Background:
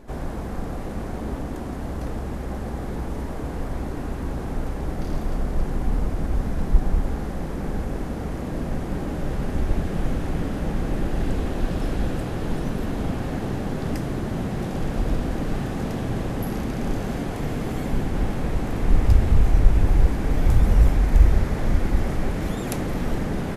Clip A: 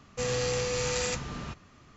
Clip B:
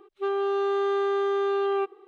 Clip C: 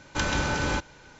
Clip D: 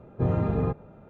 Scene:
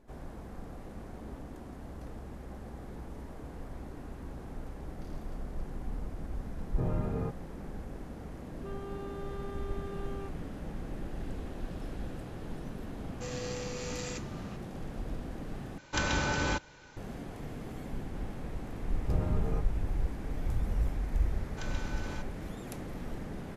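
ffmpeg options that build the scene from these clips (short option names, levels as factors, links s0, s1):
-filter_complex "[4:a]asplit=2[s0][s1];[3:a]asplit=2[s2][s3];[0:a]volume=0.188[s4];[2:a]alimiter=level_in=1.19:limit=0.0631:level=0:latency=1:release=71,volume=0.841[s5];[s4]asplit=2[s6][s7];[s6]atrim=end=15.784[s8];[s2]atrim=end=1.19,asetpts=PTS-STARTPTS,volume=0.668[s9];[s7]atrim=start=16.966[s10];[s0]atrim=end=1.09,asetpts=PTS-STARTPTS,volume=0.376,afade=t=in:d=0.004:c=hsin,afade=t=out:st=1.086:d=0.004:c=hsin,adelay=290178S[s11];[s5]atrim=end=2.07,asetpts=PTS-STARTPTS,volume=0.251,afade=t=in:d=0.004:c=hsin,afade=t=out:st=2.066:d=0.004:c=hsin,adelay=8430[s12];[1:a]atrim=end=1.96,asetpts=PTS-STARTPTS,volume=0.316,afade=t=in:d=0.004:c=hsin,afade=t=out:st=1.956:d=0.004:c=hsin,adelay=13030[s13];[s1]atrim=end=1.09,asetpts=PTS-STARTPTS,volume=0.316,afade=t=in:d=0.004:c=hsin,afade=t=out:st=1.086:d=0.004:c=hsin,adelay=18890[s14];[s3]atrim=end=1.19,asetpts=PTS-STARTPTS,volume=0.15,afade=t=in:d=0.004:c=hsin,afade=t=out:st=1.186:d=0.004:c=hsin,adelay=21420[s15];[s8][s9]acrossfade=d=0.004:c1=hsin:c2=hsin[s16];[s16][s10]acrossfade=d=0.004:c1=hsin:c2=hsin[s17];[s17][s11][s12][s13][s14][s15]amix=inputs=6:normalize=0"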